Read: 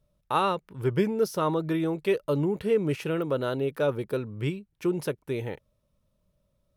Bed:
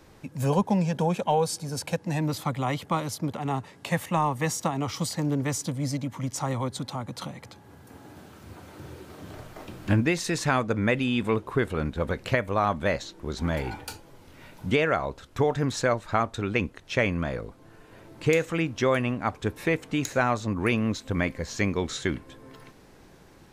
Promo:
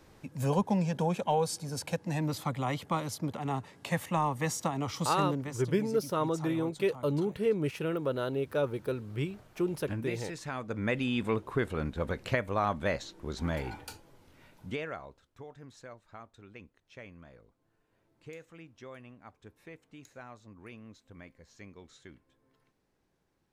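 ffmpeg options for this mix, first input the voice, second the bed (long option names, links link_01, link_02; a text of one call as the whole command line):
ffmpeg -i stem1.wav -i stem2.wav -filter_complex "[0:a]adelay=4750,volume=-4dB[link_01];[1:a]volume=4.5dB,afade=type=out:start_time=5.25:duration=0.29:silence=0.334965,afade=type=in:start_time=10.55:duration=0.47:silence=0.354813,afade=type=out:start_time=13.5:duration=1.84:silence=0.112202[link_02];[link_01][link_02]amix=inputs=2:normalize=0" out.wav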